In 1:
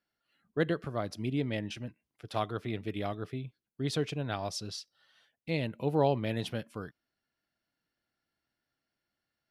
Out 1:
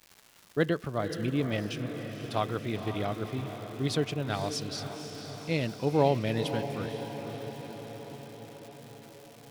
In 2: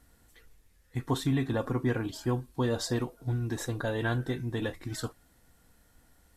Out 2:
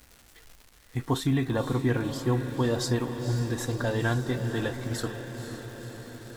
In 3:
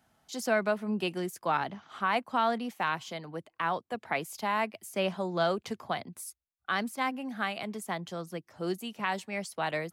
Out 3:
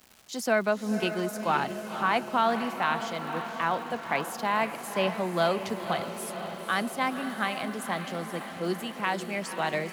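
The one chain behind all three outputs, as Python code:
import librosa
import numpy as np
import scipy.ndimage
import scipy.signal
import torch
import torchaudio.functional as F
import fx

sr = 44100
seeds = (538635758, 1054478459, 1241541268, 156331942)

y = fx.echo_diffused(x, sr, ms=511, feedback_pct=67, wet_db=-9.0)
y = fx.dmg_crackle(y, sr, seeds[0], per_s=420.0, level_db=-44.0)
y = F.gain(torch.from_numpy(y), 2.5).numpy()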